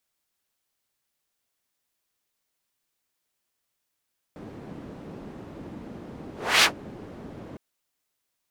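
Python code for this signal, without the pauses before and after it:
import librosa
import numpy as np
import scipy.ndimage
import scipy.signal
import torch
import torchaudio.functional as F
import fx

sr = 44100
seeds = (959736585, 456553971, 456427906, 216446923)

y = fx.whoosh(sr, seeds[0], length_s=3.21, peak_s=2.27, rise_s=0.31, fall_s=0.11, ends_hz=270.0, peak_hz=3100.0, q=1.0, swell_db=24)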